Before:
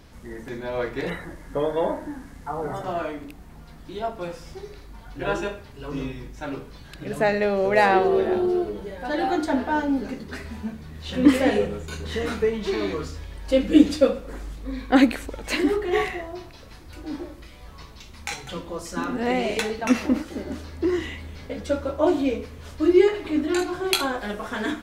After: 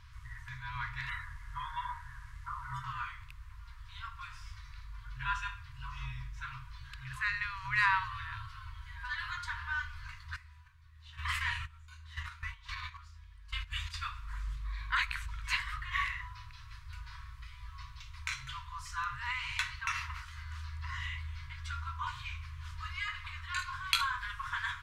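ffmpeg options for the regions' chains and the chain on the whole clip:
-filter_complex "[0:a]asettb=1/sr,asplit=3[a][b][c];[a]atrim=end=10.364[d];[b]atrim=start=10.36:end=13.94,asetpts=PTS-STARTPTS,afade=t=in:d=0.004:c=qsin,afade=t=out:st=3.576:d=0.004:c=qsin,agate=range=-14dB:threshold=-26dB:ratio=16:release=100:detection=peak,highshelf=f=9.3k:g=4.5[e];[c]atrim=start=13.936[f];[d][e]acrossfade=d=0.004:c1=hsin:c2=qsin[g];[g][f]acrossfade=d=0.004:c1=qsin:c2=hsin,lowpass=f=2.9k:p=1,afftfilt=real='re*(1-between(b*sr/4096,130,930))':imag='im*(1-between(b*sr/4096,130,930))':win_size=4096:overlap=0.75,volume=-2.5dB"

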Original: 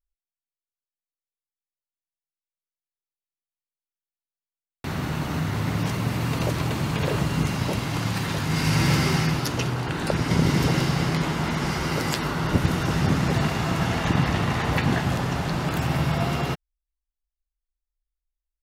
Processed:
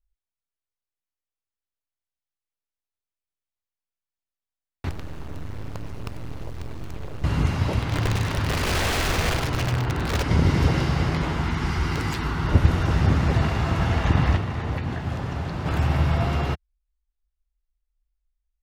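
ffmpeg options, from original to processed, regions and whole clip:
-filter_complex "[0:a]asettb=1/sr,asplit=3[a][b][c];[a]atrim=end=4.894[d];[b]atrim=start=4.89:end=7.24,asetpts=PTS-STARTPTS,afade=t=in:d=0.004:c=qsin,afade=t=out:st=2.346:d=0.004:c=qsin,bass=f=250:g=2,treble=f=4k:g=3,acrossover=split=270|570[e][f][g];[e]acompressor=threshold=-36dB:ratio=4[h];[f]acompressor=threshold=-39dB:ratio=4[i];[g]acompressor=threshold=-45dB:ratio=4[j];[h][i][j]amix=inputs=3:normalize=0,acrusher=bits=5:dc=4:mix=0:aa=0.000001[k];[c]atrim=start=7.236[l];[d][k]acrossfade=d=0.004:c1=hsin:c2=qsin[m];[m][l]acrossfade=d=0.004:c1=qsin:c2=hsin,asettb=1/sr,asplit=3[n][o][p];[n]atrim=end=7.824[q];[o]atrim=start=7.82:end=10.23,asetpts=PTS-STARTPTS,afade=t=in:d=0.004:c=qsin,afade=t=out:st=2.406:d=0.004:c=qsin,highshelf=f=7.2k:g=-6.5,aeval=exprs='(mod(8.41*val(0)+1,2)-1)/8.41':c=same,aecho=1:1:98:0.473,atrim=end_sample=106281[r];[p]atrim=start=10.226[s];[q][r]acrossfade=d=0.004:c1=hsin:c2=qsin[t];[t][s]acrossfade=d=0.004:c1=qsin:c2=hsin,asettb=1/sr,asplit=3[u][v][w];[u]atrim=end=11.414[x];[v]atrim=start=11.41:end=12.48,asetpts=PTS-STARTPTS,afade=t=in:d=0.004:c=qsin,afade=t=out:st=1.066:d=0.004:c=qsin,equalizer=f=570:t=o:w=0.44:g=-12,aeval=exprs='(mod(5.31*val(0)+1,2)-1)/5.31':c=same[y];[w]atrim=start=12.476[z];[x][y]acrossfade=d=0.004:c1=hsin:c2=qsin[aa];[aa][z]acrossfade=d=0.004:c1=qsin:c2=hsin,asettb=1/sr,asplit=3[ab][ac][ad];[ab]atrim=end=14.364[ae];[ac]atrim=start=14.36:end=15.66,asetpts=PTS-STARTPTS,afade=t=in:d=0.004:c=qsin,afade=t=out:st=1.296:d=0.004:c=qsin,highpass=44,acrossover=split=83|520[af][ag][ah];[af]acompressor=threshold=-47dB:ratio=4[ai];[ag]acompressor=threshold=-28dB:ratio=4[aj];[ah]acompressor=threshold=-35dB:ratio=4[ak];[ai][aj][ak]amix=inputs=3:normalize=0[al];[ad]atrim=start=15.656[am];[ae][al]acrossfade=d=0.004:c1=hsin:c2=qsin[an];[an][am]acrossfade=d=0.004:c1=qsin:c2=hsin,lowpass=f=3.3k:p=1,lowshelf=f=110:t=q:w=1.5:g=8.5"

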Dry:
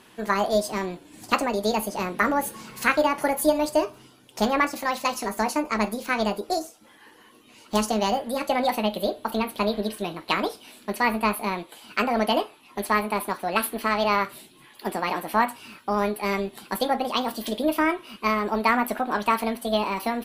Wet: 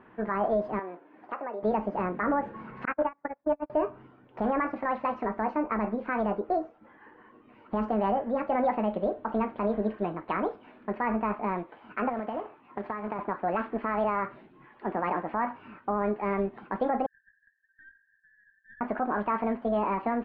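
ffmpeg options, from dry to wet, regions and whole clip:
-filter_complex "[0:a]asettb=1/sr,asplit=3[a][b][c];[a]atrim=end=0.794[d];[b]atrim=start=0.79:end=1.63,asetpts=PTS-STARTPTS,afade=t=in:d=0.004:c=qsin,afade=t=out:st=0.836:d=0.004:c=qsin,highpass=440,acompressor=threshold=-34dB:ratio=2.5:attack=3.2:release=140:knee=1:detection=peak,highshelf=f=5k:g=-11.5[e];[c]atrim=start=1.626[f];[d][e]acrossfade=d=0.004:c1=hsin:c2=qsin[g];[g][f]acrossfade=d=0.004:c1=qsin:c2=hsin,asettb=1/sr,asplit=3[h][i][j];[h]atrim=end=2.854[k];[i]atrim=start=2.85:end=3.7,asetpts=PTS-STARTPTS,afade=t=in:d=0.004:c=qsin,afade=t=out:st=0.846:d=0.004:c=qsin,bandreject=f=71.29:t=h:w=4,bandreject=f=142.58:t=h:w=4,bandreject=f=213.87:t=h:w=4,bandreject=f=285.16:t=h:w=4,bandreject=f=356.45:t=h:w=4,bandreject=f=427.74:t=h:w=4,bandreject=f=499.03:t=h:w=4,bandreject=f=570.32:t=h:w=4,bandreject=f=641.61:t=h:w=4,bandreject=f=712.9:t=h:w=4,bandreject=f=784.19:t=h:w=4,bandreject=f=855.48:t=h:w=4,bandreject=f=926.77:t=h:w=4,bandreject=f=998.06:t=h:w=4,bandreject=f=1.06935k:t=h:w=4,bandreject=f=1.14064k:t=h:w=4,bandreject=f=1.21193k:t=h:w=4,bandreject=f=1.28322k:t=h:w=4,bandreject=f=1.35451k:t=h:w=4,bandreject=f=1.4258k:t=h:w=4,bandreject=f=1.49709k:t=h:w=4,bandreject=f=1.56838k:t=h:w=4,bandreject=f=1.63967k:t=h:w=4,bandreject=f=1.71096k:t=h:w=4,bandreject=f=1.78225k:t=h:w=4,agate=range=-41dB:threshold=-21dB:ratio=16:release=100:detection=peak,highshelf=f=3.5k:t=q:w=1.5:g=-8.5[l];[j]atrim=start=3.696[m];[k][l]acrossfade=d=0.004:c1=hsin:c2=qsin[n];[n][m]acrossfade=d=0.004:c1=qsin:c2=hsin,asettb=1/sr,asplit=3[o][p][q];[o]atrim=end=12.094[r];[p]atrim=start=12.09:end=13.19,asetpts=PTS-STARTPTS,afade=t=in:d=0.004:c=qsin,afade=t=out:st=1.096:d=0.004:c=qsin,highpass=81,acompressor=threshold=-28dB:ratio=16:attack=3.2:release=140:knee=1:detection=peak,acrusher=bits=2:mode=log:mix=0:aa=0.000001[s];[q]atrim=start=13.186[t];[r][s]acrossfade=d=0.004:c1=hsin:c2=qsin[u];[u][t]acrossfade=d=0.004:c1=qsin:c2=hsin,asettb=1/sr,asplit=3[v][w][x];[v]atrim=end=17.064[y];[w]atrim=start=17.06:end=18.81,asetpts=PTS-STARTPTS,afade=t=in:d=0.004:c=qsin,afade=t=out:st=1.746:d=0.004:c=qsin,acompressor=threshold=-31dB:ratio=4:attack=3.2:release=140:knee=1:detection=peak,asuperpass=centerf=1700:order=12:qfactor=6.4,aeval=exprs='(tanh(79.4*val(0)+0.55)-tanh(0.55))/79.4':c=same[z];[x]atrim=start=18.806[aa];[y][z]acrossfade=d=0.004:c1=hsin:c2=qsin[ab];[ab][aa]acrossfade=d=0.004:c1=qsin:c2=hsin,lowpass=f=1.8k:w=0.5412,lowpass=f=1.8k:w=1.3066,alimiter=limit=-18dB:level=0:latency=1:release=32"

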